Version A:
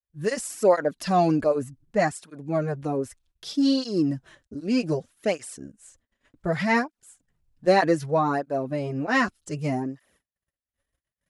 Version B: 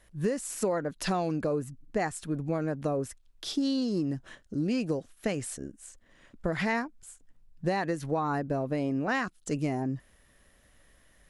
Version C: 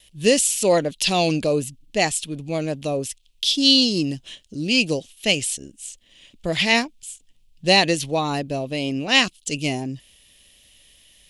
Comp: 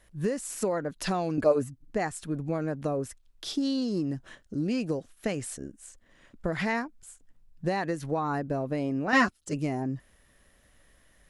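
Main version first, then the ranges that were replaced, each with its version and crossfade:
B
1.38–1.81 s: from A
9.13–9.53 s: from A
not used: C

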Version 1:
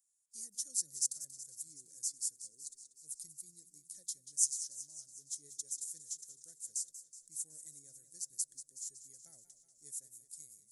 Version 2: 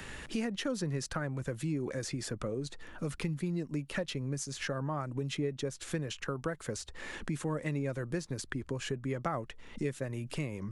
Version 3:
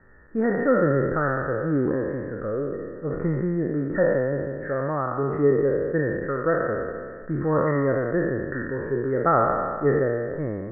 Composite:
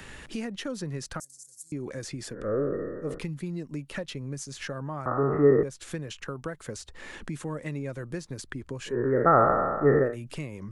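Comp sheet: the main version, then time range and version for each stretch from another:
2
1.20–1.72 s: from 1
2.40–3.11 s: from 3, crossfade 0.24 s
5.06–5.63 s: from 3
8.93–10.09 s: from 3, crossfade 0.16 s

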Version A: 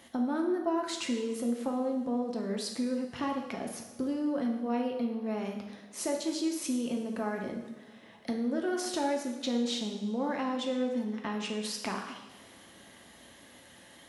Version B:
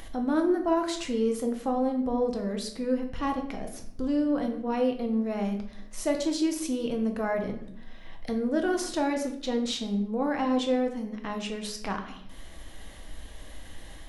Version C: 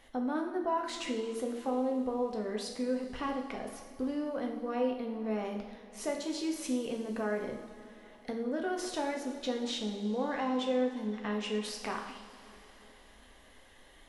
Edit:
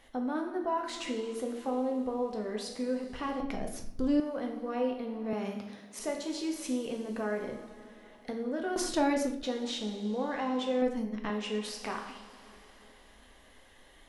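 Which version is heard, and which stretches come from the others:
C
3.40–4.20 s: from B
5.33–5.99 s: from A
8.76–9.43 s: from B
10.82–11.30 s: from B

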